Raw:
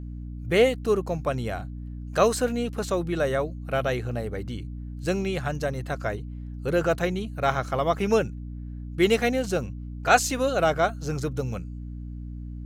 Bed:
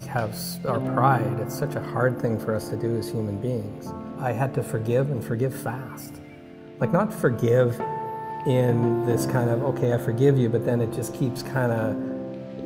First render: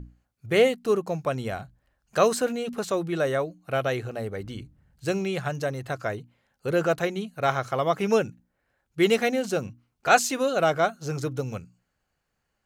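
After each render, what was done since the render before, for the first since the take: hum notches 60/120/180/240/300 Hz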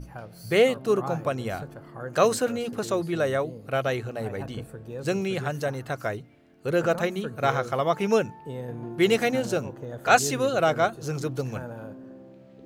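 add bed -14.5 dB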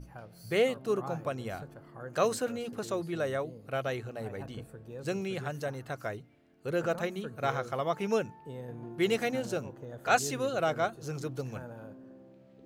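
trim -7 dB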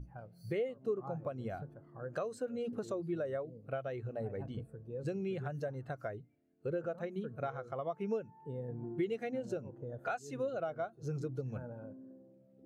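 compression 10:1, threshold -36 dBFS, peak gain reduction 17.5 dB; spectral contrast expander 1.5:1

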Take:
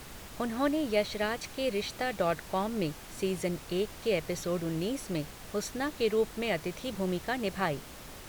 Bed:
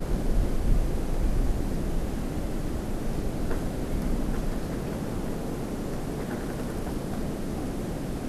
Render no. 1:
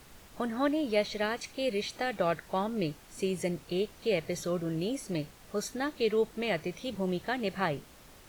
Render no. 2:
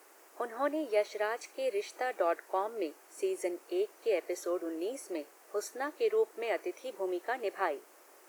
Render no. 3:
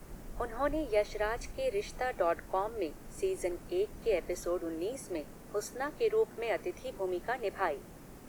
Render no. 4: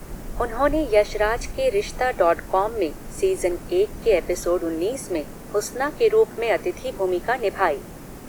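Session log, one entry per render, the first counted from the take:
noise print and reduce 8 dB
elliptic high-pass 340 Hz, stop band 70 dB; peaking EQ 3.6 kHz -12 dB 0.94 oct
add bed -20 dB
trim +12 dB

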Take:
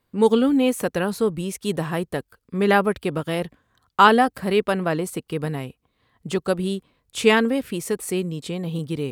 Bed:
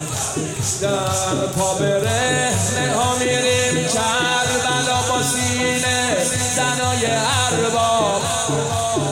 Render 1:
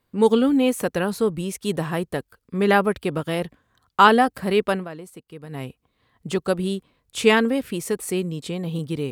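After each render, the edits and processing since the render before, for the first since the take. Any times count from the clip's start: 4.73–5.63 s: dip -13 dB, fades 0.15 s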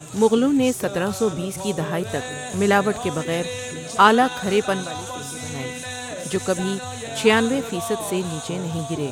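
add bed -13 dB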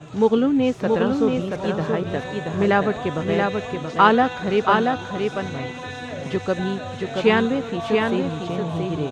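distance through air 210 m; delay 679 ms -4 dB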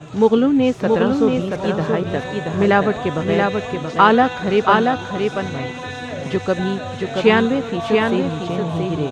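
trim +3.5 dB; peak limiter -1 dBFS, peak gain reduction 2 dB

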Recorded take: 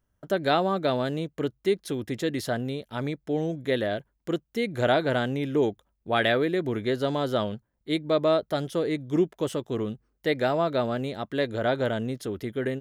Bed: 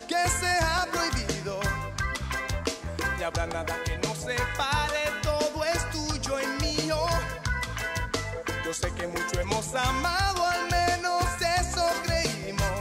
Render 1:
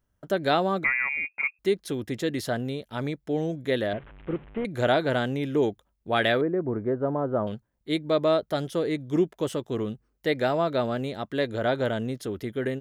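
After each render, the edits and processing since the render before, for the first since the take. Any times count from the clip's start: 0.84–1.59 s: frequency inversion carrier 2.6 kHz; 3.93–4.65 s: one-bit delta coder 16 kbps, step -41.5 dBFS; 6.41–7.47 s: low-pass 1.3 kHz 24 dB/octave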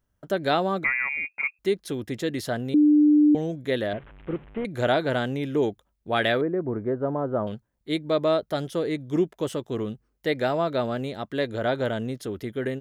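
2.74–3.35 s: bleep 298 Hz -13.5 dBFS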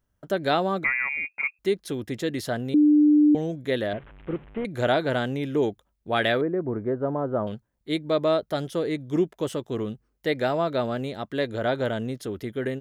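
no audible change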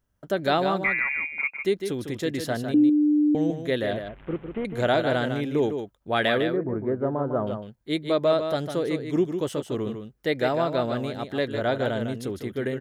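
delay 153 ms -7.5 dB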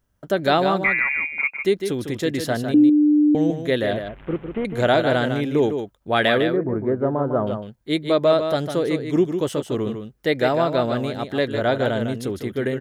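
trim +4.5 dB

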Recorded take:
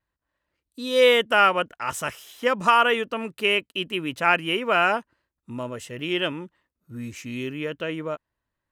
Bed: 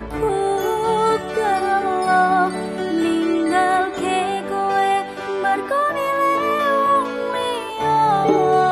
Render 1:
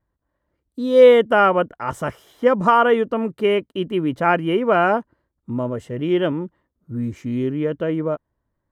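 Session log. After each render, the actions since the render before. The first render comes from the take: tilt shelf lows +10 dB, about 1.5 kHz; band-stop 2.6 kHz, Q 8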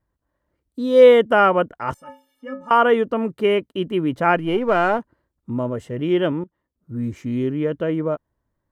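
1.94–2.71 s: inharmonic resonator 260 Hz, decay 0.38 s, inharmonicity 0.03; 4.36–4.99 s: partial rectifier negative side -3 dB; 6.44–7.07 s: fade in, from -16.5 dB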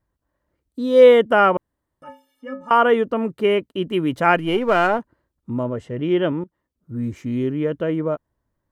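1.57–2.02 s: room tone; 3.91–4.87 s: treble shelf 2.3 kHz +7 dB; 5.63–6.38 s: distance through air 55 m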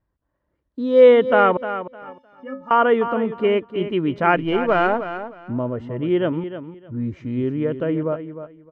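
distance through air 210 m; feedback delay 306 ms, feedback 21%, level -11 dB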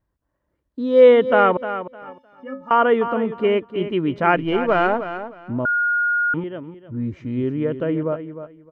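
5.65–6.34 s: bleep 1.43 kHz -16.5 dBFS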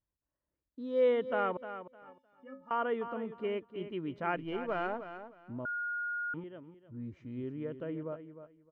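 trim -16.5 dB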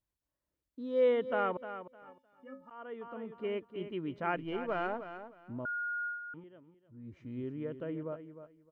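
2.70–3.61 s: fade in, from -22.5 dB; 6.06–7.17 s: dip -8 dB, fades 0.14 s

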